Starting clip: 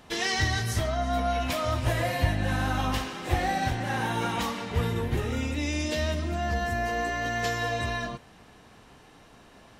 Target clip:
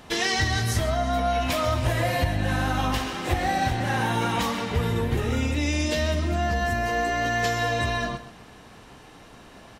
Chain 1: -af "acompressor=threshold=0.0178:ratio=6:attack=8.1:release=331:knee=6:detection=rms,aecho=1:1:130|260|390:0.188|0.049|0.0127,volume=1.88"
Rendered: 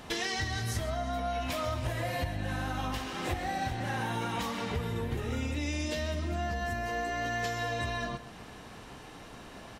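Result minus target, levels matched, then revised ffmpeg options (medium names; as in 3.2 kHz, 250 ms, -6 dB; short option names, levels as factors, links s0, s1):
compression: peak gain reduction +10 dB
-af "acompressor=threshold=0.0708:ratio=6:attack=8.1:release=331:knee=6:detection=rms,aecho=1:1:130|260|390:0.188|0.049|0.0127,volume=1.88"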